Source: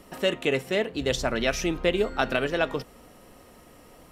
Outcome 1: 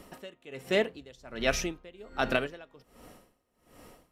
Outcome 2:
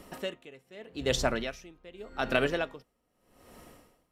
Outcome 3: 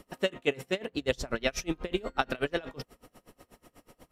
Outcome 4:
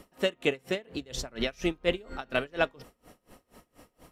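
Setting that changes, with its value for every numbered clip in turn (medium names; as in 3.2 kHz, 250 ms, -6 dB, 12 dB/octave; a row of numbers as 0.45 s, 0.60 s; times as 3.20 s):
logarithmic tremolo, rate: 1.3 Hz, 0.83 Hz, 8.2 Hz, 4.2 Hz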